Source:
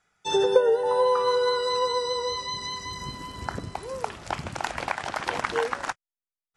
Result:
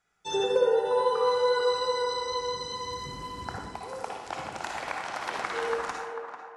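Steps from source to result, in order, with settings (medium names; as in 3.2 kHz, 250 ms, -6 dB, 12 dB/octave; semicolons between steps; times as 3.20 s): 3.58–5.62 s: bass shelf 190 Hz -10.5 dB; band-passed feedback delay 444 ms, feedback 42%, band-pass 770 Hz, level -6 dB; reverberation RT60 0.70 s, pre-delay 49 ms, DRR 0.5 dB; trim -6 dB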